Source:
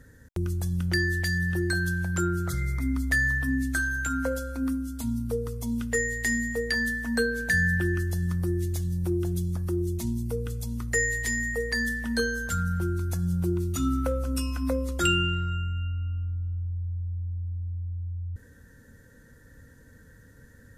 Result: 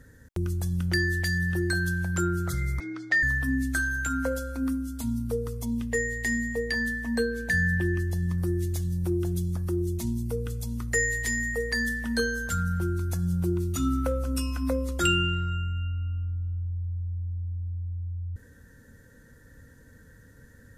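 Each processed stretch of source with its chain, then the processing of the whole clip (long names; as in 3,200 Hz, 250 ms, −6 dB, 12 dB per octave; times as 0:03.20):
0:02.80–0:03.23: frequency shifter +54 Hz + loudspeaker in its box 450–5,600 Hz, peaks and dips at 650 Hz +4 dB, 1,000 Hz −4 dB, 1,600 Hz +4 dB
0:05.65–0:08.38: Butterworth band-reject 1,400 Hz, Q 3.6 + high-shelf EQ 3,700 Hz −5.5 dB
whole clip: no processing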